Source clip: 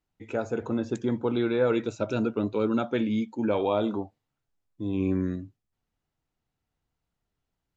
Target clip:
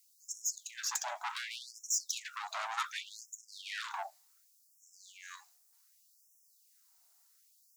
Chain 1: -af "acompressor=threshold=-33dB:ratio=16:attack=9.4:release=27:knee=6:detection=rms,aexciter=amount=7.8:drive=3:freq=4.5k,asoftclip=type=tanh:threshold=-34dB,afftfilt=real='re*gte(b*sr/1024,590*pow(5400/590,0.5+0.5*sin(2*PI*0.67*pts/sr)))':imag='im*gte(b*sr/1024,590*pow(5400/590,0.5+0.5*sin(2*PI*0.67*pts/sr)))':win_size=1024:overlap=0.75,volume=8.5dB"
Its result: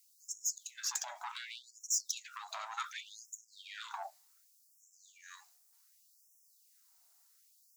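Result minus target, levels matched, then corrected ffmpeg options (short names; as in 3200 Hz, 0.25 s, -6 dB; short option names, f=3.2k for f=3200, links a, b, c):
compressor: peak gain reduction +9.5 dB
-af "acompressor=threshold=-22.5dB:ratio=16:attack=9.4:release=27:knee=6:detection=rms,aexciter=amount=7.8:drive=3:freq=4.5k,asoftclip=type=tanh:threshold=-34dB,afftfilt=real='re*gte(b*sr/1024,590*pow(5400/590,0.5+0.5*sin(2*PI*0.67*pts/sr)))':imag='im*gte(b*sr/1024,590*pow(5400/590,0.5+0.5*sin(2*PI*0.67*pts/sr)))':win_size=1024:overlap=0.75,volume=8.5dB"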